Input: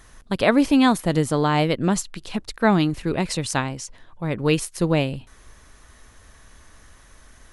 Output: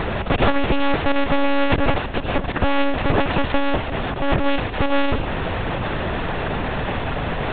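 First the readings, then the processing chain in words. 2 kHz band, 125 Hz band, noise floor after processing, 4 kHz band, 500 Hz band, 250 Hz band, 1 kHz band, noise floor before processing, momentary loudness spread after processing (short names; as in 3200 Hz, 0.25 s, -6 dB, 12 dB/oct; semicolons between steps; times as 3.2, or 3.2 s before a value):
+5.0 dB, +1.0 dB, -27 dBFS, +2.5 dB, +2.5 dB, -1.5 dB, +4.5 dB, -51 dBFS, 5 LU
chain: per-bin compression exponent 0.2; added harmonics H 4 -12 dB, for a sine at 7.5 dBFS; monotone LPC vocoder at 8 kHz 280 Hz; gain -6.5 dB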